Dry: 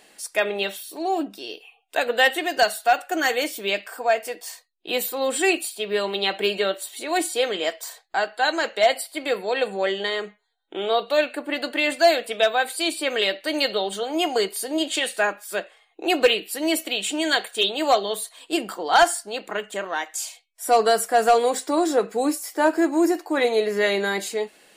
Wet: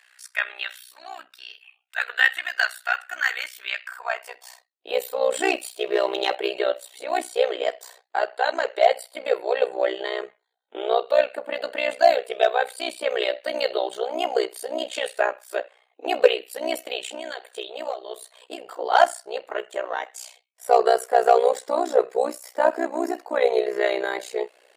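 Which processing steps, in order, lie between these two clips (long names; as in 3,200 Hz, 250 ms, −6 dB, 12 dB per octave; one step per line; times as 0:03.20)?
high-pass filter 360 Hz 6 dB per octave
high-shelf EQ 3,800 Hz −8 dB
0:05.32–0:06.35: leveller curve on the samples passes 1
0:17.05–0:18.72: downward compressor 8 to 1, threshold −30 dBFS, peak gain reduction 15.5 dB
high-pass filter sweep 1,500 Hz → 500 Hz, 0:03.84–0:04.91
amplitude modulation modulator 62 Hz, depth 90%
level +1 dB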